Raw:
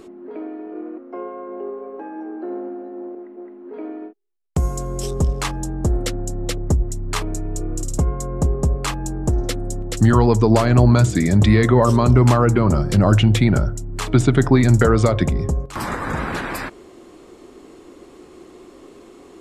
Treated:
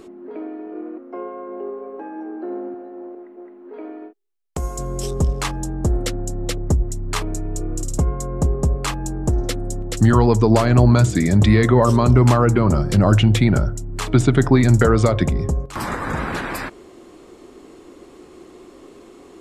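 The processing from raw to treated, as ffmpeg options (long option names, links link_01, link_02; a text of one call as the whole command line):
ffmpeg -i in.wav -filter_complex "[0:a]asettb=1/sr,asplit=3[link_01][link_02][link_03];[link_01]atrim=end=2.744[link_04];[link_02]atrim=start=2.74:end=4.79,asetpts=PTS-STARTPTS,afade=type=in:duration=0.004:curve=qsin,afade=type=out:start_time=2.046:duration=0.004:curve=qsin,equalizer=frequency=120:width=0.76:gain=-12[link_05];[link_03]atrim=start=4.786[link_06];[link_04][link_05]acrossfade=duration=0.004:curve1=hsin:curve2=qsin[link_07];[link_07][link_06]acrossfade=duration=0.004:curve1=qsin:curve2=hsin" out.wav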